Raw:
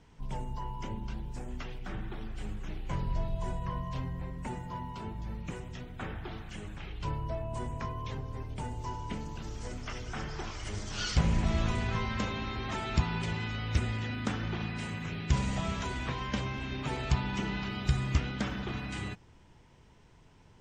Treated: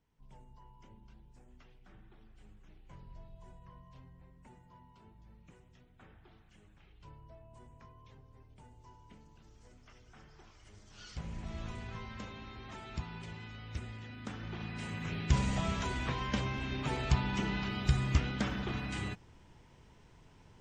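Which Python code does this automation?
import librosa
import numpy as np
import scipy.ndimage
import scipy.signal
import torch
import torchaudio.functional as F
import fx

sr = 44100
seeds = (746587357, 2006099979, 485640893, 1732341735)

y = fx.gain(x, sr, db=fx.line((10.81, -19.5), (11.67, -12.0), (14.12, -12.0), (15.13, -0.5)))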